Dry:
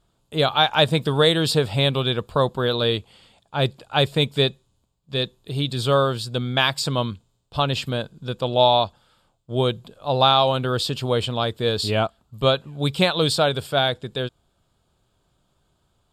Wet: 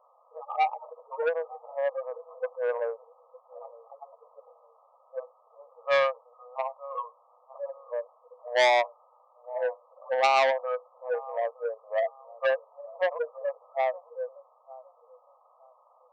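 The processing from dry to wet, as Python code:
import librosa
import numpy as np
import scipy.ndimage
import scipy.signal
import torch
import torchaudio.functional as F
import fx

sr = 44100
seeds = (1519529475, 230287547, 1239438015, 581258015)

y = fx.hpss_only(x, sr, part='harmonic')
y = fx.comb(y, sr, ms=7.3, depth=0.7, at=(3.64, 4.23))
y = fx.quant_dither(y, sr, seeds[0], bits=8, dither='triangular')
y = fx.brickwall_bandpass(y, sr, low_hz=470.0, high_hz=1300.0)
y = fx.echo_feedback(y, sr, ms=912, feedback_pct=25, wet_db=-21.5)
y = fx.transformer_sat(y, sr, knee_hz=2400.0)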